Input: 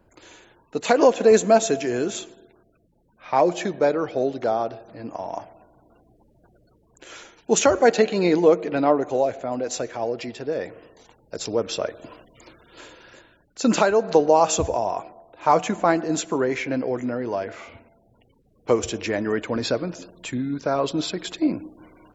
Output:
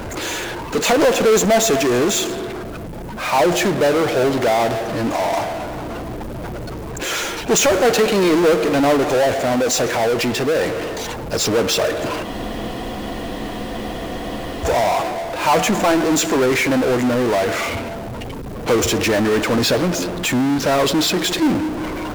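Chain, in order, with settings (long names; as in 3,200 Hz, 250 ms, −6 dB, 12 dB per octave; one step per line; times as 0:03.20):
power curve on the samples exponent 0.35
frozen spectrum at 0:12.27, 2.37 s
level −3.5 dB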